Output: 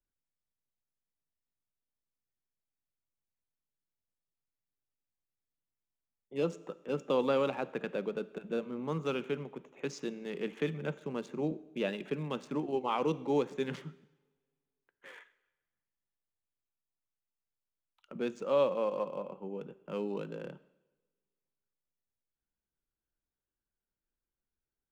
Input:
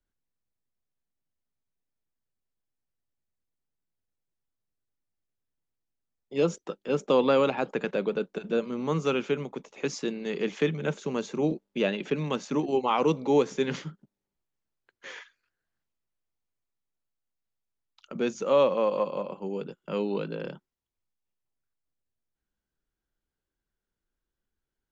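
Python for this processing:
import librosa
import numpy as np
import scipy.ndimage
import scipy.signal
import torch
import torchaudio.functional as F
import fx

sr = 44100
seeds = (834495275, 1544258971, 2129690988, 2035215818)

y = fx.wiener(x, sr, points=9)
y = fx.rev_double_slope(y, sr, seeds[0], early_s=0.95, late_s=2.4, knee_db=-24, drr_db=15.5)
y = y * librosa.db_to_amplitude(-7.0)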